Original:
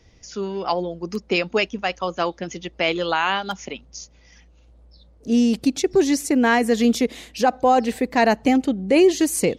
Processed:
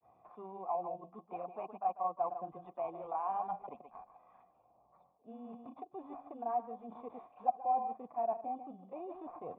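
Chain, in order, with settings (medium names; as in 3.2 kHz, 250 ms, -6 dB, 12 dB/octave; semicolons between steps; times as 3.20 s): high-pass 110 Hz 24 dB/octave; bass shelf 330 Hz +6 dB; delay 144 ms -12.5 dB; in parallel at -5 dB: sample-rate reducer 3.2 kHz, jitter 0%; on the sum: granulator 108 ms, grains 20 per s, spray 25 ms, pitch spread up and down by 0 st; reverse; compression 6:1, threshold -25 dBFS, peak gain reduction 18 dB; reverse; cascade formant filter a; tape noise reduction on one side only encoder only; trim +2.5 dB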